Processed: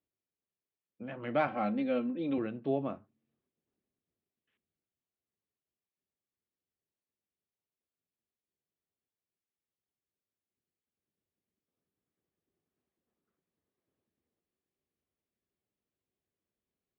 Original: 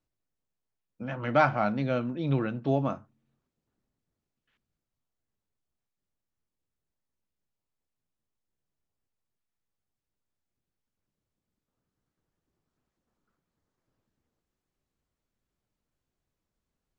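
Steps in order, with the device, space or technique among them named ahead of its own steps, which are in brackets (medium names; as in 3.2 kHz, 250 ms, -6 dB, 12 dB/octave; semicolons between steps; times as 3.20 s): 1.47–2.38 s: comb 3.8 ms, depth 79%; guitar cabinet (cabinet simulation 91–3600 Hz, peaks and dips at 130 Hz -7 dB, 390 Hz +5 dB, 930 Hz -5 dB, 1.4 kHz -6 dB); trim -5.5 dB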